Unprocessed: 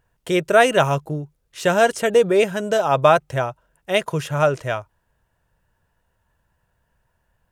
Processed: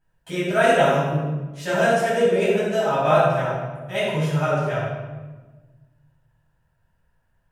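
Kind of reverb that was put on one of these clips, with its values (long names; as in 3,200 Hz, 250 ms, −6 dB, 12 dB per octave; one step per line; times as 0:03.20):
rectangular room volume 880 cubic metres, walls mixed, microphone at 8.3 metres
level −16.5 dB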